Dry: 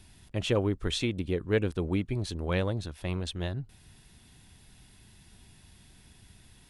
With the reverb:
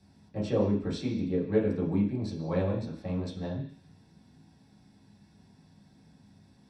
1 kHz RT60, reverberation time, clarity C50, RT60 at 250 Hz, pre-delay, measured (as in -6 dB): 0.50 s, 0.50 s, 7.0 dB, 0.50 s, 3 ms